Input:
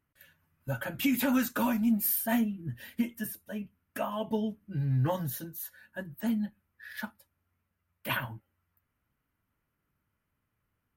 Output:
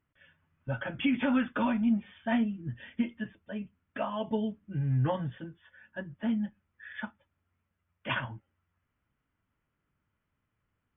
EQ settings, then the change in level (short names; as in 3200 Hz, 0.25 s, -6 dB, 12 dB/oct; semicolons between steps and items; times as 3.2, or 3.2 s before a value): brick-wall FIR low-pass 3600 Hz; 0.0 dB